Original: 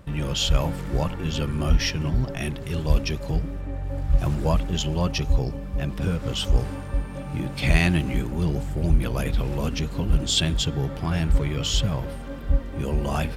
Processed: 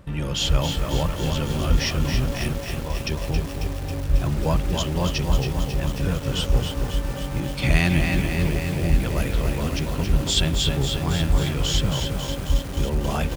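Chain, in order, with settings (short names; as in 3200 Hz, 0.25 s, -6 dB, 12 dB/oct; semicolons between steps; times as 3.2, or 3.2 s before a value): 2.53–3.07 rippled Chebyshev low-pass 3600 Hz, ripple 9 dB; speakerphone echo 0.29 s, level -7 dB; lo-fi delay 0.272 s, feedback 80%, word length 6-bit, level -6 dB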